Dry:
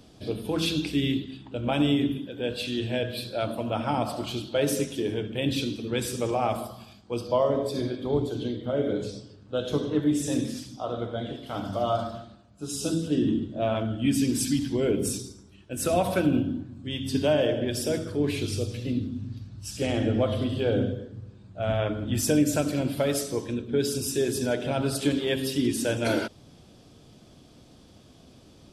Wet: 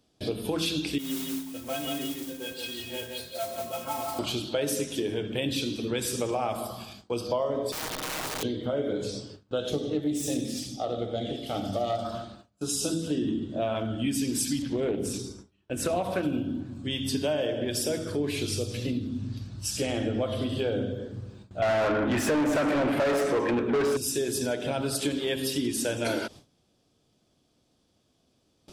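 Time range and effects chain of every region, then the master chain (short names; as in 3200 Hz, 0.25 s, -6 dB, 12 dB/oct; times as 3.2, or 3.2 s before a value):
0.98–4.19 metallic resonator 79 Hz, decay 0.55 s, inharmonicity 0.03 + modulation noise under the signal 12 dB + echo 0.173 s -4.5 dB
7.72–8.43 minimum comb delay 6.4 ms + compressor 3:1, threshold -34 dBFS + wrapped overs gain 34 dB
9.7–12.05 self-modulated delay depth 0.078 ms + Butterworth band-stop 1000 Hz, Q 3.8 + bell 1500 Hz -11.5 dB 0.46 oct
14.62–16.23 high shelf 4600 Hz -10.5 dB + Doppler distortion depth 0.16 ms
21.62–23.97 resonant high shelf 2800 Hz -11.5 dB, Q 1.5 + overdrive pedal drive 31 dB, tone 1700 Hz, clips at -11 dBFS + mismatched tape noise reduction encoder only
whole clip: gate with hold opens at -40 dBFS; tone controls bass -4 dB, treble +3 dB; compressor 3:1, threshold -34 dBFS; gain +6 dB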